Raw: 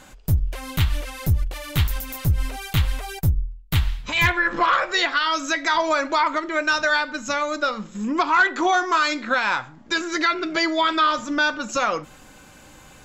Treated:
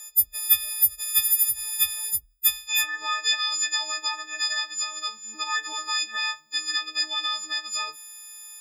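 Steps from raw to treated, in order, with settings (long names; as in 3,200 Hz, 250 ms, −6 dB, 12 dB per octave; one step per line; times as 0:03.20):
every partial snapped to a pitch grid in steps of 6 semitones
first-order pre-emphasis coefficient 0.97
time stretch by phase vocoder 0.66×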